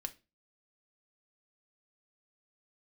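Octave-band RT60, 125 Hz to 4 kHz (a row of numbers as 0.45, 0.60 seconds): 0.35, 0.40, 0.30, 0.25, 0.25, 0.25 seconds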